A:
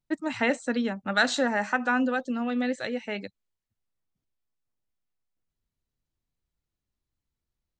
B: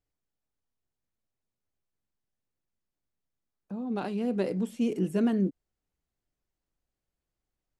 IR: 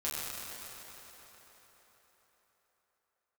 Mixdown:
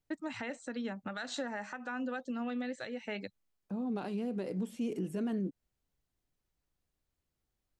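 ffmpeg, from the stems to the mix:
-filter_complex "[0:a]acompressor=threshold=-33dB:ratio=3,volume=-2.5dB[a];[1:a]volume=-1dB[b];[a][b]amix=inputs=2:normalize=0,alimiter=level_in=4dB:limit=-24dB:level=0:latency=1:release=172,volume=-4dB"

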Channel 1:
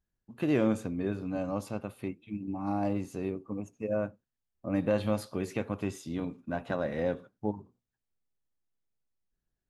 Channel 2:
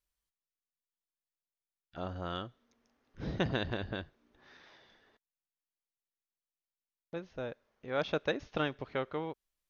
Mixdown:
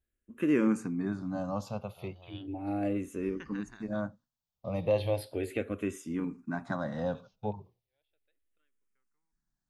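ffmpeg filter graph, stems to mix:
-filter_complex "[0:a]volume=2dB,asplit=2[a][b];[1:a]equalizer=f=280:w=0.3:g=-12,volume=-5.5dB[c];[b]apad=whole_len=427502[d];[c][d]sidechaingate=range=-36dB:threshold=-53dB:ratio=16:detection=peak[e];[a][e]amix=inputs=2:normalize=0,asplit=2[f][g];[g]afreqshift=-0.36[h];[f][h]amix=inputs=2:normalize=1"

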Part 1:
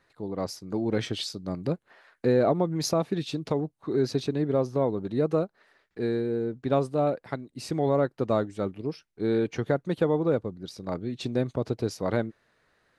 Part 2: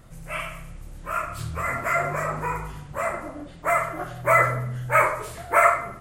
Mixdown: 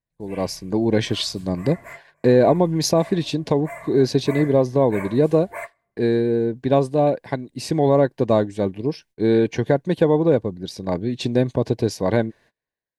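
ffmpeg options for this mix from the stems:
-filter_complex "[0:a]agate=range=-29dB:threshold=-56dB:ratio=16:detection=peak,dynaudnorm=f=140:g=5:m=9dB,volume=-0.5dB,asplit=2[a][b];[1:a]volume=-12.5dB[c];[b]apad=whole_len=264861[d];[c][d]sidechaingate=range=-28dB:threshold=-43dB:ratio=16:detection=peak[e];[a][e]amix=inputs=2:normalize=0,asuperstop=centerf=1300:order=4:qfactor=4"

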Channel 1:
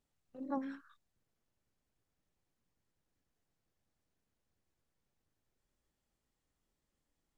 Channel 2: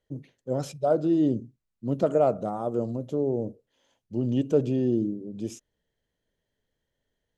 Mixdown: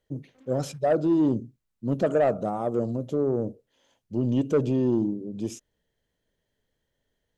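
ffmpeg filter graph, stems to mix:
-filter_complex "[0:a]acrusher=bits=7:mix=0:aa=0.5,volume=-12dB[a];[1:a]volume=2.5dB,asplit=2[b][c];[c]apad=whole_len=325289[d];[a][d]sidechaincompress=threshold=-23dB:ratio=8:attack=16:release=360[e];[e][b]amix=inputs=2:normalize=0,asoftclip=type=tanh:threshold=-14.5dB"

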